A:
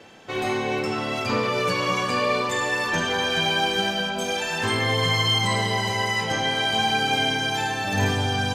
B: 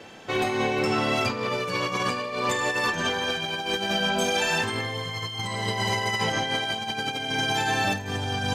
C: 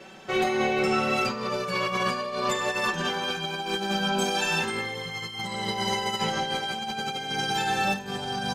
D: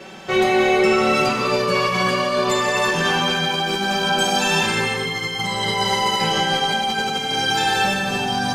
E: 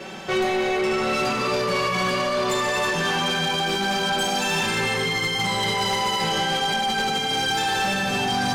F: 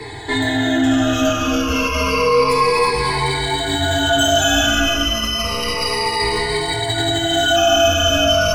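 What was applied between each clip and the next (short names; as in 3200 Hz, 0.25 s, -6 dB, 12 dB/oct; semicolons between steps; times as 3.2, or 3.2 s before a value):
negative-ratio compressor -26 dBFS, ratio -0.5
comb 5.3 ms, depth 86%; gain -3.5 dB
in parallel at +2.5 dB: limiter -20.5 dBFS, peak gain reduction 7 dB; on the sum: non-linear reverb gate 0.36 s flat, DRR 1.5 dB
vocal rider 0.5 s; soft clip -18.5 dBFS, distortion -12 dB
moving spectral ripple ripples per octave 0.97, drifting -0.3 Hz, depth 22 dB; frequency shift -110 Hz; spectral repair 7.59–8.08, 1000–8900 Hz after; gain +1.5 dB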